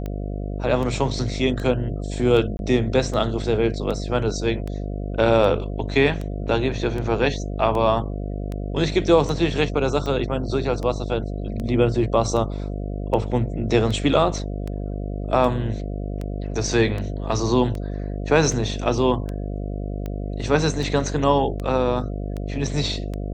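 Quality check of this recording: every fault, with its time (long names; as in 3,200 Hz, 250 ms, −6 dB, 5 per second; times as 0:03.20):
mains buzz 50 Hz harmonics 14 −28 dBFS
scratch tick 78 rpm −18 dBFS
0:02.57–0:02.59: drop-out 21 ms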